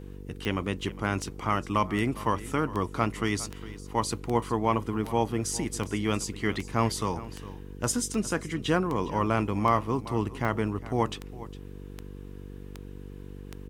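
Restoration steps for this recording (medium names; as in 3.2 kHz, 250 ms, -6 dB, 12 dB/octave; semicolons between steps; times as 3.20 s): de-click; de-hum 48.4 Hz, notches 10; inverse comb 408 ms -17 dB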